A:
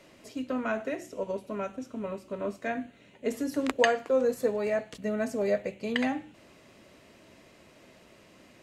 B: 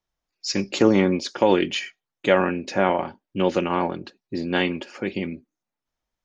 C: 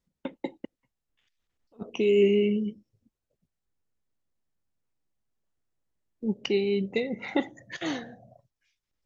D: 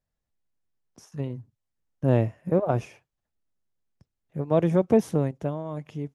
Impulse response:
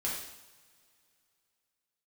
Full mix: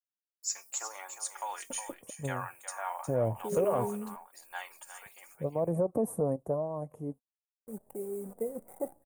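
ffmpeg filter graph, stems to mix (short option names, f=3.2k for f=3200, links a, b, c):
-filter_complex "[1:a]highpass=f=920:w=0.5412,highpass=f=920:w=1.3066,crystalizer=i=7.5:c=0,acrusher=bits=8:mix=0:aa=0.000001,volume=-5.5dB,asplit=2[a][b];[b]volume=-9.5dB[c];[2:a]lowpass=2k,acrusher=bits=7:dc=4:mix=0:aa=0.000001,adelay=1450,volume=-10dB[d];[3:a]equalizer=f=1.1k:w=5.1:g=7,adelay=1050,volume=-2dB[e];[d][e]amix=inputs=2:normalize=0,equalizer=f=530:w=1.5:g=10,alimiter=limit=-14dB:level=0:latency=1:release=46,volume=0dB[f];[c]aecho=0:1:359:1[g];[a][f][g]amix=inputs=3:normalize=0,firequalizer=gain_entry='entry(230,0);entry(380,-3);entry(740,1);entry(1500,-11);entry(2800,-24);entry(4900,-23);entry(8600,11)':delay=0.05:min_phase=1,flanger=delay=1.1:depth=3.3:regen=56:speed=0.89:shape=sinusoidal"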